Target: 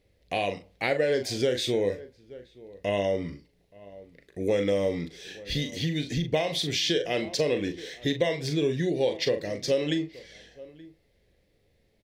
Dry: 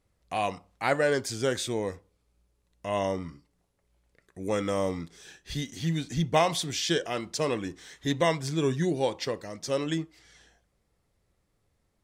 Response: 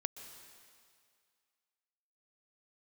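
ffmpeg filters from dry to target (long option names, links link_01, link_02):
-filter_complex "[0:a]equalizer=frequency=1300:width_type=o:width=0.55:gain=-9,asplit=2[link_01][link_02];[link_02]adelay=40,volume=-8.5dB[link_03];[link_01][link_03]amix=inputs=2:normalize=0,asplit=2[link_04][link_05];[link_05]adelay=874.6,volume=-25dB,highshelf=frequency=4000:gain=-19.7[link_06];[link_04][link_06]amix=inputs=2:normalize=0,acompressor=threshold=-30dB:ratio=6,equalizer=frequency=500:width_type=o:width=1:gain=8,equalizer=frequency=1000:width_type=o:width=1:gain=-8,equalizer=frequency=2000:width_type=o:width=1:gain=6,equalizer=frequency=4000:width_type=o:width=1:gain=5,equalizer=frequency=8000:width_type=o:width=1:gain=-8,volume=4dB"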